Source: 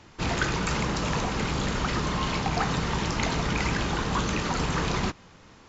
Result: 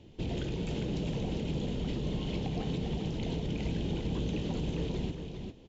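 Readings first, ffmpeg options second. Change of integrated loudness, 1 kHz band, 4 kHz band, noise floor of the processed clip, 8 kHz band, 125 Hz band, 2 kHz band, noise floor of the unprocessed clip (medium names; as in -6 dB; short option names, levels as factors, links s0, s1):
-7.5 dB, -18.5 dB, -11.0 dB, -53 dBFS, no reading, -4.0 dB, -19.0 dB, -52 dBFS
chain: -af "firequalizer=gain_entry='entry(450,0);entry(1200,-25);entry(3100,-4);entry(4800,-15)':delay=0.05:min_phase=1,alimiter=level_in=1.26:limit=0.0631:level=0:latency=1:release=142,volume=0.794,aecho=1:1:401:0.501"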